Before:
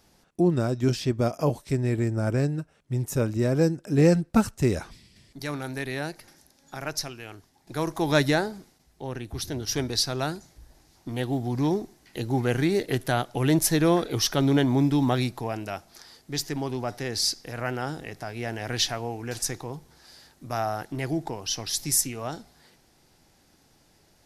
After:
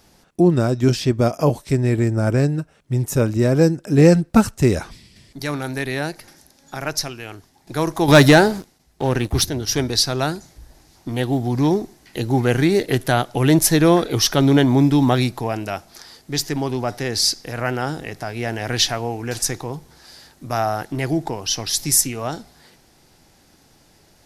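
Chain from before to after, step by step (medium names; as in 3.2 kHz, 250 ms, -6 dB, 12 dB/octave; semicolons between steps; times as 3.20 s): 8.08–9.45 s: waveshaping leveller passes 2; trim +7 dB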